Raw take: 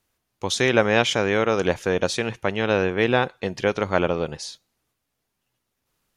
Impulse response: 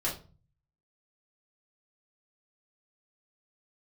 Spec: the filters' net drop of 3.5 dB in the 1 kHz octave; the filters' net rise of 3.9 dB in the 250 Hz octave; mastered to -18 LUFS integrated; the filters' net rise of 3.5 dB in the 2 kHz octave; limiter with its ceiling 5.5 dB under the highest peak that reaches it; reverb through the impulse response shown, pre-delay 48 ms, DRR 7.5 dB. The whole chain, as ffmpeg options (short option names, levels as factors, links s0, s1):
-filter_complex "[0:a]equalizer=f=250:t=o:g=5.5,equalizer=f=1000:t=o:g=-8,equalizer=f=2000:t=o:g=7,alimiter=limit=0.355:level=0:latency=1,asplit=2[s0][s1];[1:a]atrim=start_sample=2205,adelay=48[s2];[s1][s2]afir=irnorm=-1:irlink=0,volume=0.211[s3];[s0][s3]amix=inputs=2:normalize=0,volume=1.5"